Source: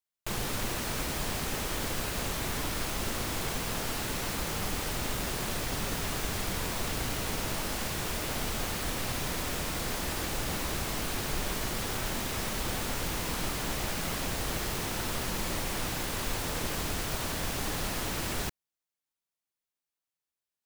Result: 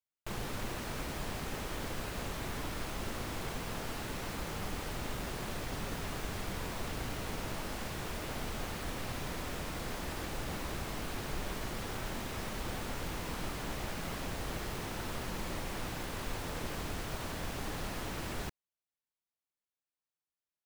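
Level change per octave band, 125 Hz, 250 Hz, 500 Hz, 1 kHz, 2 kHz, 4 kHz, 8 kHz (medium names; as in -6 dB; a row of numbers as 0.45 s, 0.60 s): -4.5 dB, -4.5 dB, -4.5 dB, -5.0 dB, -6.5 dB, -8.5 dB, -11.0 dB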